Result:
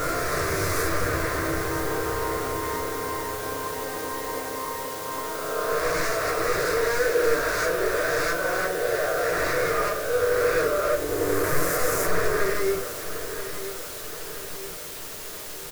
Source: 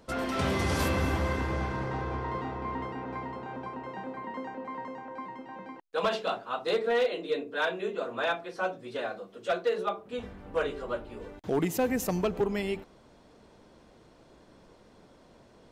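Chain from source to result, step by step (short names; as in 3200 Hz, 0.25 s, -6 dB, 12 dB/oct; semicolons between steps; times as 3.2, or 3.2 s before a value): spectral swells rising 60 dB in 2.34 s; bell 800 Hz +5 dB 0.27 oct; wavefolder -24.5 dBFS; fixed phaser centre 840 Hz, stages 6; in parallel at -4.5 dB: requantised 6-bit, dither triangular; on the sum: feedback echo 0.976 s, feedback 52%, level -11.5 dB; on a send at -3 dB: reverb RT60 0.30 s, pre-delay 6 ms; on the sum: gain +1 dB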